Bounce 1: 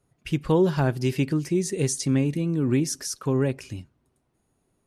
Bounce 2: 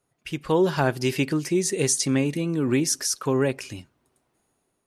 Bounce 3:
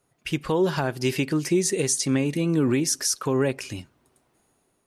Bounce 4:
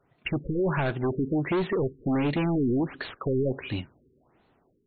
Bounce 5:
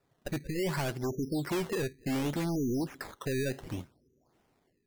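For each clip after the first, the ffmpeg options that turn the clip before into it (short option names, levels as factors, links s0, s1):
-af "lowshelf=f=260:g=-12,dynaudnorm=f=160:g=7:m=2"
-af "alimiter=limit=0.141:level=0:latency=1:release=440,volume=1.68"
-af "asoftclip=type=hard:threshold=0.0473,afftfilt=real='re*lt(b*sr/1024,460*pow(4500/460,0.5+0.5*sin(2*PI*1.4*pts/sr)))':imag='im*lt(b*sr/1024,460*pow(4500/460,0.5+0.5*sin(2*PI*1.4*pts/sr)))':win_size=1024:overlap=0.75,volume=1.58"
-af "acrusher=samples=14:mix=1:aa=0.000001:lfo=1:lforange=14:lforate=0.66,volume=0.501"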